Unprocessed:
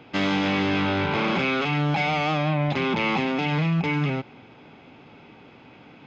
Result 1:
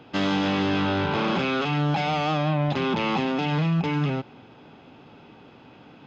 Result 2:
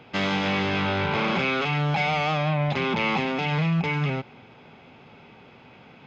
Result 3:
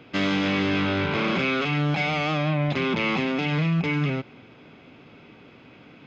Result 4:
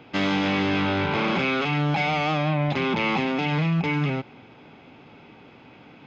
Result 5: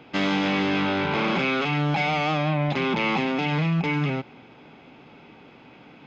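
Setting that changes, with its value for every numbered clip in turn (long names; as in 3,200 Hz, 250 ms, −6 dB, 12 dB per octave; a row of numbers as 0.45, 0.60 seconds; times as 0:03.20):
parametric band, centre frequency: 2,200, 300, 840, 10,000, 100 Hertz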